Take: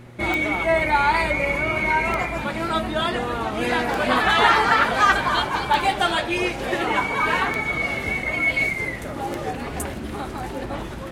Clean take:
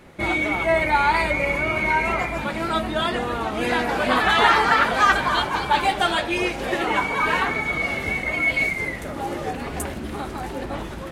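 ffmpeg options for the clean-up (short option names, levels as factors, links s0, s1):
-af "adeclick=t=4,bandreject=f=120.3:t=h:w=4,bandreject=f=240.6:t=h:w=4,bandreject=f=360.9:t=h:w=4"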